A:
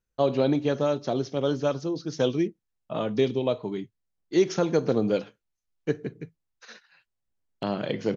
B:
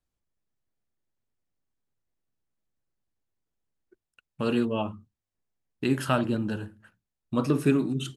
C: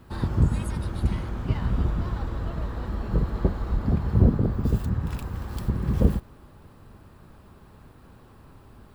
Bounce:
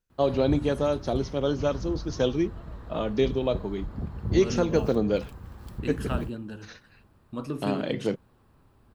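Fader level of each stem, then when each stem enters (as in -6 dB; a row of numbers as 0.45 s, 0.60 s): -0.5 dB, -8.5 dB, -10.5 dB; 0.00 s, 0.00 s, 0.10 s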